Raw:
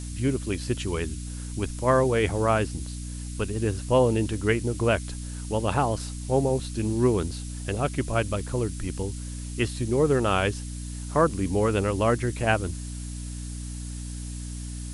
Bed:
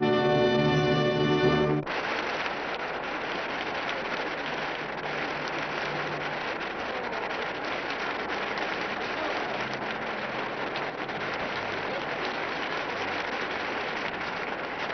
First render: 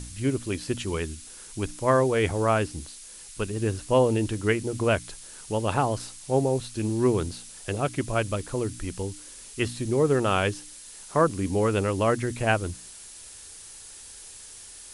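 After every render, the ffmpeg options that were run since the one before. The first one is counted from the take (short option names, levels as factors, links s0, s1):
-af "bandreject=f=60:t=h:w=4,bandreject=f=120:t=h:w=4,bandreject=f=180:t=h:w=4,bandreject=f=240:t=h:w=4,bandreject=f=300:t=h:w=4"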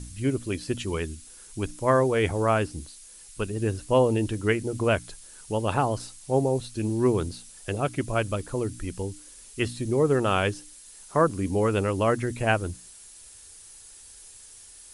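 -af "afftdn=nr=6:nf=-45"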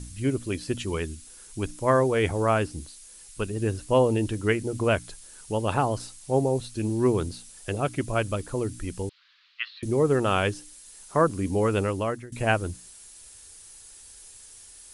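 -filter_complex "[0:a]asettb=1/sr,asplit=3[s0][s1][s2];[s0]atrim=end=9.094[s3];[s1]atrim=start=9.09:end=9.83,asetpts=PTS-STARTPTS,afade=t=in:d=0.004:c=qsin,afade=t=out:st=0.736:d=0.004:c=qsin,asuperpass=centerf=2200:order=12:qfactor=0.68[s4];[s2]atrim=start=9.826[s5];[s3][s4]acrossfade=d=0.004:c1=hsin:c2=qsin[s6];[s6][s5]acrossfade=d=0.004:c1=qsin:c2=hsin,asplit=2[s7][s8];[s7]atrim=end=12.32,asetpts=PTS-STARTPTS,afade=t=out:st=11.84:d=0.48:silence=0.0841395[s9];[s8]atrim=start=12.32,asetpts=PTS-STARTPTS,afade=t=in:d=0.004:c=hsin:silence=0.0841395[s10];[s9][s10]concat=n=2:v=0:a=1"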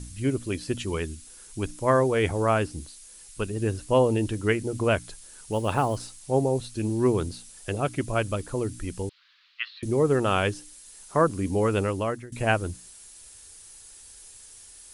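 -filter_complex "[0:a]asettb=1/sr,asplit=3[s0][s1][s2];[s0]atrim=end=5.524[s3];[s1]atrim=start=5.52:end=6.2,asetpts=PTS-STARTPTS,afade=t=in:d=0.004:c=qsin,afade=t=out:st=0.676:d=0.004:c=qsin,acrusher=bits=8:mode=log:mix=0:aa=0.000001[s4];[s2]atrim=start=6.196[s5];[s3][s4]acrossfade=d=0.004:c1=hsin:c2=qsin[s6];[s6][s5]acrossfade=d=0.004:c1=qsin:c2=hsin"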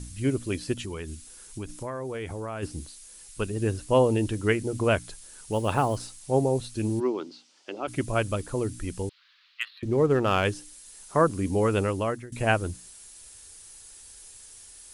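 -filter_complex "[0:a]asplit=3[s0][s1][s2];[s0]afade=t=out:st=0.73:d=0.02[s3];[s1]acompressor=threshold=0.0282:ratio=6:attack=3.2:release=140:knee=1:detection=peak,afade=t=in:st=0.73:d=0.02,afade=t=out:st=2.62:d=0.02[s4];[s2]afade=t=in:st=2.62:d=0.02[s5];[s3][s4][s5]amix=inputs=3:normalize=0,asplit=3[s6][s7][s8];[s6]afade=t=out:st=6.99:d=0.02[s9];[s7]highpass=f=290:w=0.5412,highpass=f=290:w=1.3066,equalizer=f=460:t=q:w=4:g=-9,equalizer=f=680:t=q:w=4:g=-5,equalizer=f=1100:t=q:w=4:g=-3,equalizer=f=1700:t=q:w=4:g=-9,equalizer=f=2500:t=q:w=4:g=-4,equalizer=f=3800:t=q:w=4:g=-6,lowpass=f=4800:w=0.5412,lowpass=f=4800:w=1.3066,afade=t=in:st=6.99:d=0.02,afade=t=out:st=7.87:d=0.02[s10];[s8]afade=t=in:st=7.87:d=0.02[s11];[s9][s10][s11]amix=inputs=3:normalize=0,asettb=1/sr,asplit=3[s12][s13][s14];[s12]atrim=end=9.614[s15];[s13]atrim=start=9.61:end=10.45,asetpts=PTS-STARTPTS,afade=t=in:d=0.004:c=qsin,afade=t=out:st=0.836:d=0.004:c=qsin,adynamicsmooth=sensitivity=5.5:basefreq=3500[s16];[s14]atrim=start=10.446[s17];[s15][s16]acrossfade=d=0.004:c1=hsin:c2=qsin[s18];[s18][s17]acrossfade=d=0.004:c1=qsin:c2=hsin"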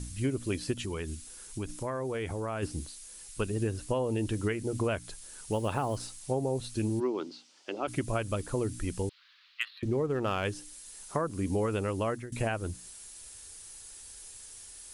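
-af "alimiter=limit=0.168:level=0:latency=1:release=377,acompressor=threshold=0.0501:ratio=6"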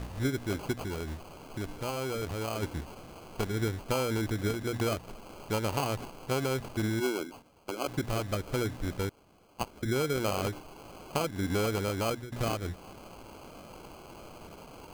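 -af "acrusher=samples=24:mix=1:aa=0.000001"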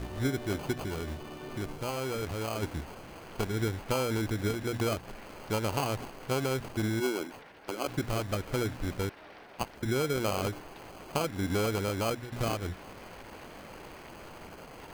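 -filter_complex "[1:a]volume=0.0891[s0];[0:a][s0]amix=inputs=2:normalize=0"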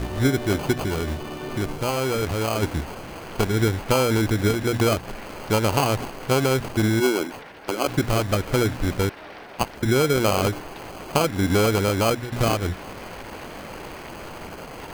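-af "volume=3.16"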